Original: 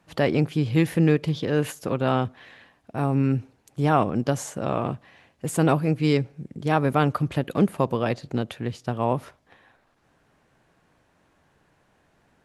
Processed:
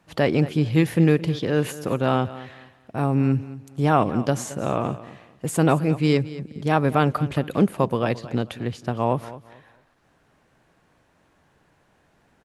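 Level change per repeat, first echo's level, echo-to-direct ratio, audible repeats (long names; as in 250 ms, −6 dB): −11.5 dB, −16.5 dB, −16.0 dB, 2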